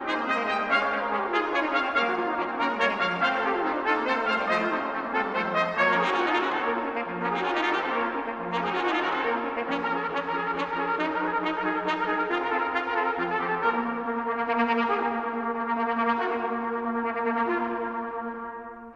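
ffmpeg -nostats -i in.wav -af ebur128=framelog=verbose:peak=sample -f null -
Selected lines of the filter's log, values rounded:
Integrated loudness:
  I:         -26.3 LUFS
  Threshold: -36.4 LUFS
Loudness range:
  LRA:         2.4 LU
  Threshold: -46.3 LUFS
  LRA low:   -27.5 LUFS
  LRA high:  -25.0 LUFS
Sample peak:
  Peak:      -10.3 dBFS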